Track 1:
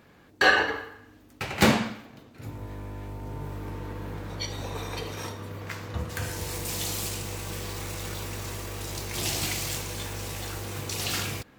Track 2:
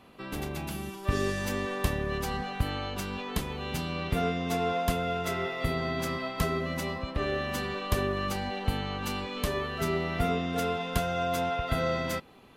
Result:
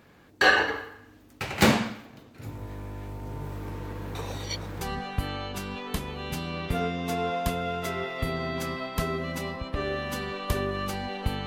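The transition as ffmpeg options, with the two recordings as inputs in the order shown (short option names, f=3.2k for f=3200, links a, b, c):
-filter_complex "[0:a]apad=whole_dur=11.46,atrim=end=11.46,asplit=2[a][b];[a]atrim=end=4.152[c];[b]atrim=start=4.148:end=4.812,asetpts=PTS-STARTPTS,areverse[d];[1:a]atrim=start=2.228:end=8.88[e];[c][d]acrossfade=d=0.004:c1=hsin:c2=hsin[f];[f][e]acrossfade=d=0.004:c1=hsin:c2=hsin"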